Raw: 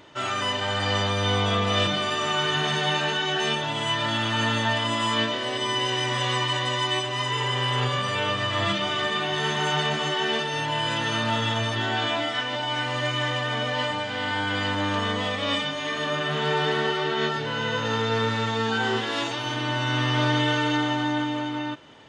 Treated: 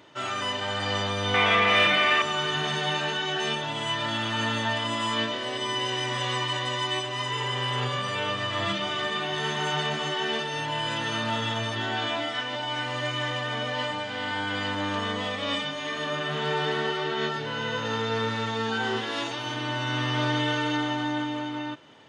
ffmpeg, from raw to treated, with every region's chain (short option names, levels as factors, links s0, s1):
-filter_complex "[0:a]asettb=1/sr,asplit=3[s0][s1][s2];[s0]atrim=end=1.344[s3];[s1]atrim=start=1.34:end=2.22,asetpts=PTS-STARTPTS,afade=t=in:d=0.004:c=qsin,afade=t=out:st=0.876:d=0.004:c=qsin,asplit=2[s4][s5];[s5]highpass=f=720:p=1,volume=6.31,asoftclip=type=tanh:threshold=0.335[s6];[s4][s6]amix=inputs=2:normalize=0,lowpass=f=1500:p=1,volume=0.501,equalizer=f=2200:w=1.9:g=13[s7];[s2]atrim=start=2.216[s8];[s3][s7]acrossfade=d=0.004:c1=hsin:c2=qsin[s9];[s9][s8]acrossfade=d=0.004:c1=qsin:c2=hsin,highpass=97,bandreject=f=7500:w=24,volume=0.708"